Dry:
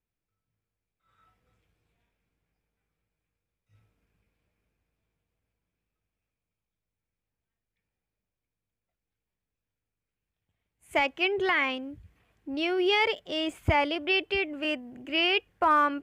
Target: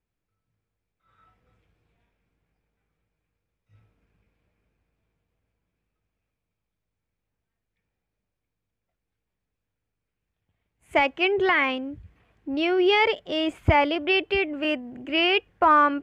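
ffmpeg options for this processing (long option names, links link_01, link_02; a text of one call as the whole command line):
ffmpeg -i in.wav -af "lowpass=frequency=2800:poles=1,volume=5.5dB" out.wav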